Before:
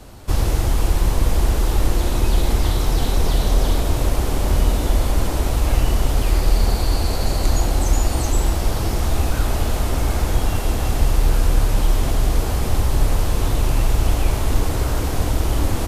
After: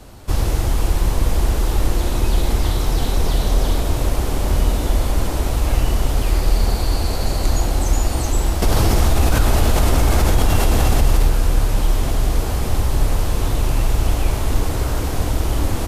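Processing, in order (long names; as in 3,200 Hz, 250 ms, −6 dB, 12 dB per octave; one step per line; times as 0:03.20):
0:08.62–0:11.28: envelope flattener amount 70%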